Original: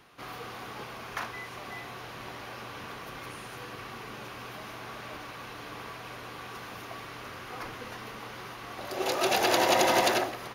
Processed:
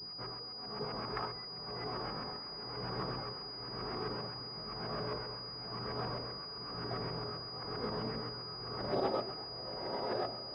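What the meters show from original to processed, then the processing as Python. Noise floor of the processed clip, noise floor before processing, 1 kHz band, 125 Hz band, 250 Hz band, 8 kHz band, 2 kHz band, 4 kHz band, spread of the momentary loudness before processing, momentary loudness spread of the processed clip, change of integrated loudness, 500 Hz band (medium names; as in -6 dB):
-45 dBFS, -44 dBFS, -9.5 dB, +2.0 dB, -5.0 dB, under -35 dB, -14.5 dB, -3.5 dB, 18 LU, 5 LU, -7.0 dB, -6.5 dB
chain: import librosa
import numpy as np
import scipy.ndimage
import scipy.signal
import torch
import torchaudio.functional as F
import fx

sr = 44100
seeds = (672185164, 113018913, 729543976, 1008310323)

y = fx.fade_out_tail(x, sr, length_s=0.62)
y = fx.peak_eq(y, sr, hz=160.0, db=6.5, octaves=0.65)
y = fx.over_compress(y, sr, threshold_db=-33.0, ratio=-1.0)
y = fx.comb_fb(y, sr, f0_hz=420.0, decay_s=0.35, harmonics='odd', damping=0.0, mix_pct=80)
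y = y * (1.0 - 0.82 / 2.0 + 0.82 / 2.0 * np.cos(2.0 * np.pi * 1.0 * (np.arange(len(y)) / sr)))
y = fx.chorus_voices(y, sr, voices=2, hz=0.33, base_ms=17, depth_ms=2.2, mix_pct=55)
y = fx.filter_lfo_lowpass(y, sr, shape='saw_up', hz=7.6, low_hz=720.0, high_hz=1900.0, q=0.71)
y = fx.echo_diffused(y, sr, ms=1027, feedback_pct=57, wet_db=-7.5)
y = fx.pwm(y, sr, carrier_hz=4900.0)
y = y * 10.0 ** (16.0 / 20.0)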